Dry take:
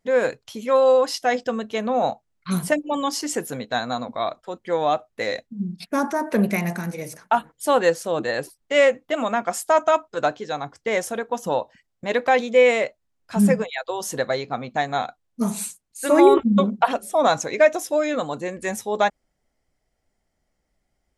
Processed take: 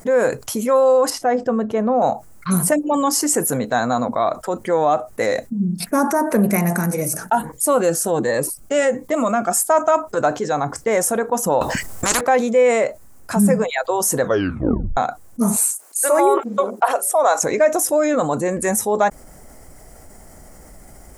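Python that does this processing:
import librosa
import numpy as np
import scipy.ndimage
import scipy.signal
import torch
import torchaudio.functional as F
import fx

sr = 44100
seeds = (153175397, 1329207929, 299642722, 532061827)

y = fx.lowpass(x, sr, hz=1100.0, slope=6, at=(1.1, 2.02))
y = fx.notch_cascade(y, sr, direction='rising', hz=1.3, at=(7.0, 9.55), fade=0.02)
y = fx.spectral_comp(y, sr, ratio=10.0, at=(11.61, 12.21))
y = fx.highpass(y, sr, hz=440.0, slope=24, at=(15.56, 17.43))
y = fx.edit(y, sr, fx.tape_stop(start_s=14.21, length_s=0.76), tone=tone)
y = fx.curve_eq(y, sr, hz=(1300.0, 3500.0, 8700.0), db=(0, -12, 7))
y = fx.env_flatten(y, sr, amount_pct=50)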